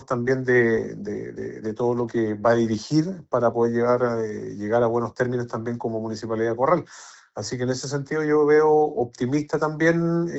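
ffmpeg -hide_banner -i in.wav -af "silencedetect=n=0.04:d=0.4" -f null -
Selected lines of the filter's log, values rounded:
silence_start: 6.81
silence_end: 7.37 | silence_duration: 0.56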